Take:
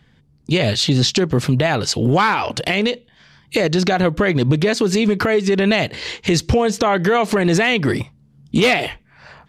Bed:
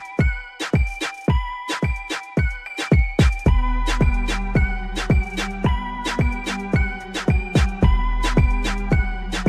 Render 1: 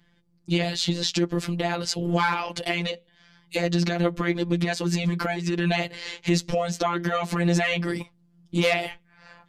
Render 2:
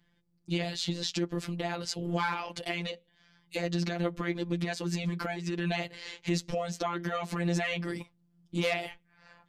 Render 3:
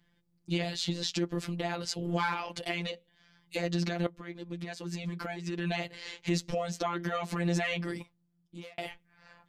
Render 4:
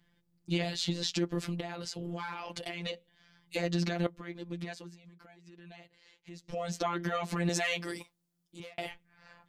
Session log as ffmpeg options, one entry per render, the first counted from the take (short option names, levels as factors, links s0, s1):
-af "flanger=delay=2.8:depth=2.1:regen=-58:speed=0.72:shape=triangular,afftfilt=real='hypot(re,im)*cos(PI*b)':imag='0':win_size=1024:overlap=0.75"
-af "volume=0.422"
-filter_complex "[0:a]asplit=3[s0][s1][s2];[s0]atrim=end=4.07,asetpts=PTS-STARTPTS,afade=t=out:st=4.066:d=0.004:c=hsin:silence=0.211349[s3];[s1]atrim=start=4.07:end=8.78,asetpts=PTS-STARTPTS,afade=t=in:d=2.02:silence=0.211349,afade=t=out:st=3.74:d=0.97[s4];[s2]atrim=start=8.78,asetpts=PTS-STARTPTS,afade=t=in:d=0.004:c=hsin[s5];[s3][s4][s5]concat=n=3:v=0:a=1"
-filter_complex "[0:a]asettb=1/sr,asplit=3[s0][s1][s2];[s0]atrim=end=1.604[s3];[s1]atrim=start=1.6:end=2.86,asetpts=PTS-STARTPTS,afade=t=in:d=0.004:c=qsin,afade=t=out:st=1.256:d=0.004:c=qsin,acompressor=threshold=0.02:ratio=4:attack=3.2:release=140:knee=1:detection=peak[s4];[s2]atrim=start=2.856[s5];[s3][s4]acrossfade=d=0.004:c1=hsin:c2=qsin[s6];[s6][s5]acrossfade=d=0.004:c1=qsin:c2=hsin,asettb=1/sr,asplit=3[s7][s8][s9];[s7]atrim=end=7.494[s10];[s8]atrim=start=7.49:end=8.6,asetpts=PTS-STARTPTS,afade=t=in:d=0.004:c=qsin,afade=t=out:st=1.106:d=0.004:c=qsin,bass=f=250:g=-10,treble=f=4000:g=8[s11];[s9]atrim=start=8.596[s12];[s10][s11]acrossfade=d=0.004:c1=hsin:c2=qsin[s13];[s13][s12]acrossfade=d=0.004:c1=qsin:c2=hsin,asplit=3[s14][s15][s16];[s14]atrim=end=4.95,asetpts=PTS-STARTPTS,afade=t=out:st=4.67:d=0.28:silence=0.112202[s17];[s15]atrim=start=4.95:end=6.42,asetpts=PTS-STARTPTS,volume=0.112[s18];[s16]atrim=start=6.42,asetpts=PTS-STARTPTS,afade=t=in:d=0.28:silence=0.112202[s19];[s17][s18][s19]concat=n=3:v=0:a=1"